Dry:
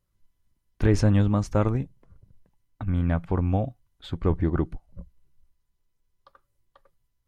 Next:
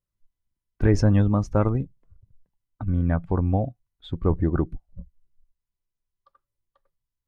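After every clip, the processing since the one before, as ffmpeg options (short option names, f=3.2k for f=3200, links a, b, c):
-af "afftdn=nr=13:nf=-38,volume=1.5dB"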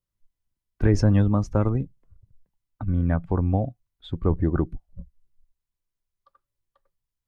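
-filter_complex "[0:a]acrossover=split=360|3000[a][b][c];[b]acompressor=threshold=-24dB:ratio=6[d];[a][d][c]amix=inputs=3:normalize=0"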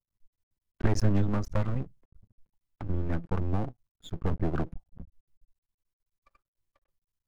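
-af "aeval=exprs='max(val(0),0)':c=same"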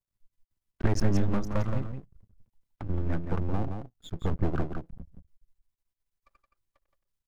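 -af "aecho=1:1:171:0.447"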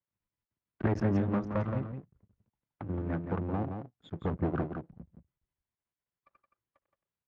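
-af "highpass=110,lowpass=2.2k"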